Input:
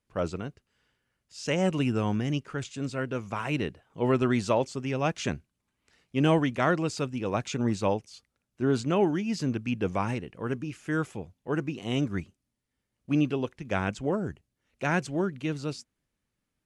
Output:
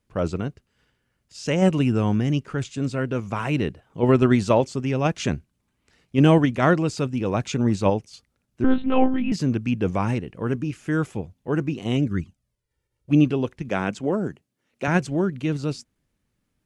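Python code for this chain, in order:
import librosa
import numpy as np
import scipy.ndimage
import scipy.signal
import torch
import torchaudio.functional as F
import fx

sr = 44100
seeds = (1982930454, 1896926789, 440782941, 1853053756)

p1 = fx.highpass(x, sr, hz=180.0, slope=12, at=(13.69, 14.88))
p2 = fx.level_steps(p1, sr, step_db=12)
p3 = p1 + (p2 * librosa.db_to_amplitude(-2.0))
p4 = fx.env_flanger(p3, sr, rest_ms=2.2, full_db=-19.0, at=(11.96, 13.19), fade=0.02)
p5 = fx.low_shelf(p4, sr, hz=420.0, db=5.5)
y = fx.lpc_monotone(p5, sr, seeds[0], pitch_hz=260.0, order=8, at=(8.64, 9.32))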